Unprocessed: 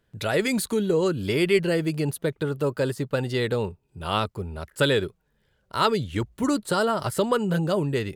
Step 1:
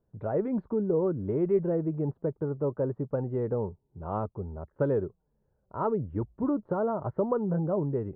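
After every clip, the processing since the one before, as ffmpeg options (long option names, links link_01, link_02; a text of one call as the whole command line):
ffmpeg -i in.wav -af "lowpass=frequency=1000:width=0.5412,lowpass=frequency=1000:width=1.3066,volume=-4dB" out.wav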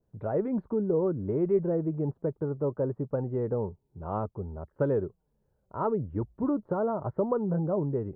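ffmpeg -i in.wav -af "adynamicequalizer=threshold=0.00447:dfrequency=1600:dqfactor=0.7:tfrequency=1600:tqfactor=0.7:attack=5:release=100:ratio=0.375:range=2:mode=cutabove:tftype=highshelf" out.wav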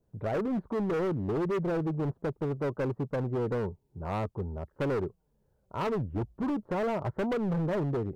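ffmpeg -i in.wav -af "asoftclip=type=hard:threshold=-29dB,volume=2dB" out.wav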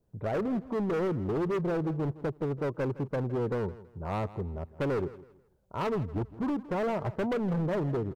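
ffmpeg -i in.wav -af "aecho=1:1:163|326|489:0.133|0.0373|0.0105" out.wav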